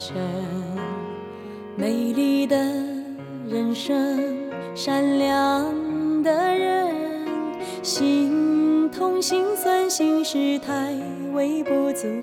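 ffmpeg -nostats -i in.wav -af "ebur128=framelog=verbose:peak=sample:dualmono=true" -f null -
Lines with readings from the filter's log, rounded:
Integrated loudness:
  I:         -19.9 LUFS
  Threshold: -30.1 LUFS
Loudness range:
  LRA:         4.0 LU
  Threshold: -39.7 LUFS
  LRA low:   -22.2 LUFS
  LRA high:  -18.2 LUFS
Sample peak:
  Peak:       -9.0 dBFS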